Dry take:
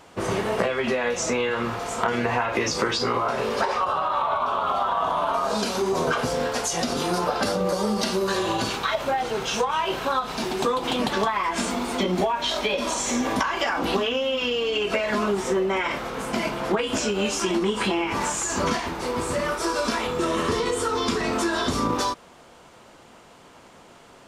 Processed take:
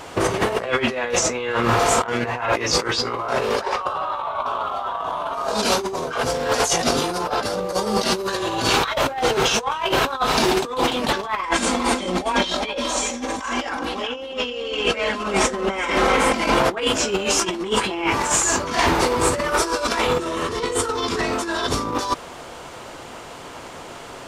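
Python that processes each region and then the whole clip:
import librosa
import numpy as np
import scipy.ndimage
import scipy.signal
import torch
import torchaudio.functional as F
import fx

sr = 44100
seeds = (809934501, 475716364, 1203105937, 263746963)

y = fx.chain(x, sr, fx.lowpass(hz=11000.0, slope=24),
    fx.comb(ms=3.8, depth=0.48),
    fx.echo_single(ms=376, db=-8.5), at=(11.42, 16.59))
y = fx.peak_eq(y, sr, hz=200.0, db=-6.5, octaves=0.5)
y = fx.over_compress(y, sr, threshold_db=-29.0, ratio=-0.5)
y = y * 10.0 ** (8.0 / 20.0)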